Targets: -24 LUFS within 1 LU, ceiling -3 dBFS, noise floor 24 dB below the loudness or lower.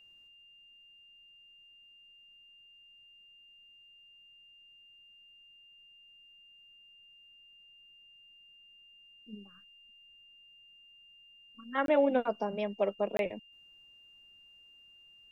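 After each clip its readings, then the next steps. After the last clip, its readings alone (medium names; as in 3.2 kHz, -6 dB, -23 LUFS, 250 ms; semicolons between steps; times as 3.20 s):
dropouts 2; longest dropout 22 ms; steady tone 2.8 kHz; tone level -56 dBFS; loudness -32.0 LUFS; peak level -15.5 dBFS; loudness target -24.0 LUFS
-> interpolate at 11.86/13.17 s, 22 ms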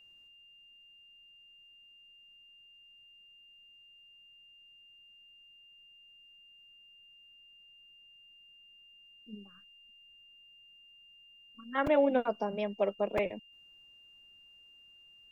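dropouts 0; steady tone 2.8 kHz; tone level -56 dBFS
-> band-stop 2.8 kHz, Q 30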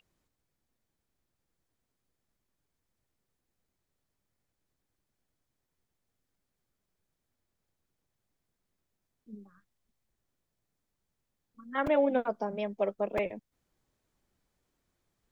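steady tone not found; loudness -31.0 LUFS; peak level -15.5 dBFS; loudness target -24.0 LUFS
-> trim +7 dB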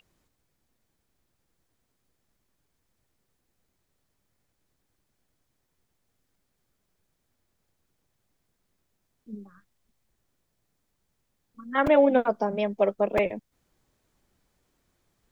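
loudness -24.0 LUFS; peak level -8.5 dBFS; noise floor -77 dBFS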